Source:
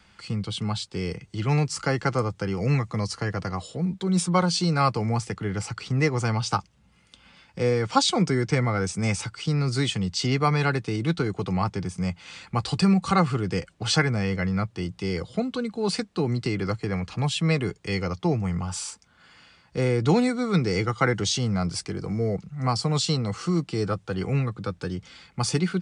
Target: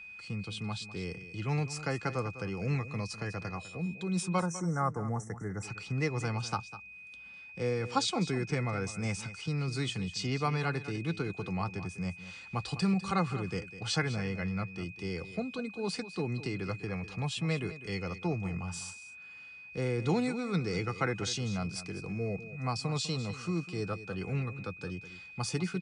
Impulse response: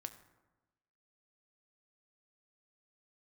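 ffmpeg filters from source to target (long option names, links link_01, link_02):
-filter_complex "[0:a]aeval=exprs='val(0)+0.0158*sin(2*PI*2500*n/s)':channel_layout=same,asettb=1/sr,asplit=3[link_01][link_02][link_03];[link_01]atrim=end=4.404[link_04];[link_02]atrim=start=4.4:end=5.63,asetpts=PTS-STARTPTS,afade=type=in:duration=0.004:curve=qsin,afade=type=out:start_time=1.226:duration=0.004:curve=qsin,asuperstop=centerf=3400:order=20:qfactor=0.96[link_05];[link_03]atrim=start=5.626[link_06];[link_04][link_05]acrossfade=duration=0.004:curve1=hsin:curve2=qsin[link_07];[link_07][link_06]acrossfade=duration=0.004:curve1=qsin:curve2=hsin,asplit=2[link_08][link_09];[link_09]aecho=0:1:201:0.2[link_10];[link_08][link_10]amix=inputs=2:normalize=0,volume=-9dB"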